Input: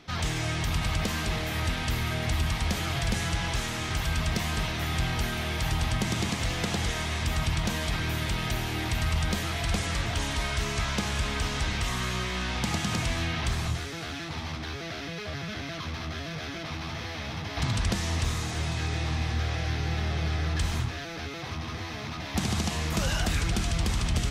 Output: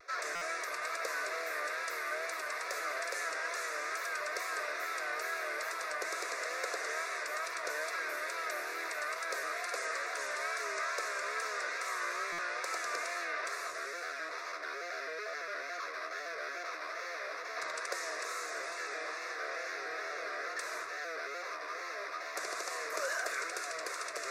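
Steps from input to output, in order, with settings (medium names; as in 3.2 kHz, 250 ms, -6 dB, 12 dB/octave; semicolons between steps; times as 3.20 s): high-pass 500 Hz 24 dB/octave; treble shelf 5.8 kHz -10 dB; reverse; upward compressor, threshold -33 dBFS; reverse; vibrato 2.3 Hz 94 cents; static phaser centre 840 Hz, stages 6; buffer glitch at 0.35/12.32 s, samples 256, times 10; trim +1.5 dB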